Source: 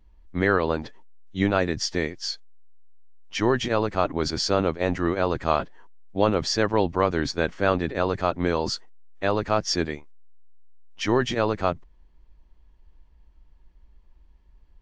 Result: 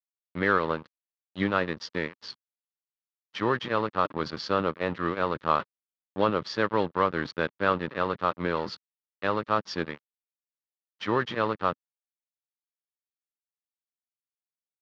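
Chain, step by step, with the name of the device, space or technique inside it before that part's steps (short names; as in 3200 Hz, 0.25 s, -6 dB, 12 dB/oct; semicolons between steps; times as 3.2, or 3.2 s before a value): blown loudspeaker (crossover distortion -33 dBFS; speaker cabinet 150–4100 Hz, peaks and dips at 260 Hz -5 dB, 370 Hz -4 dB, 710 Hz -9 dB, 1200 Hz +4 dB, 2400 Hz -4 dB)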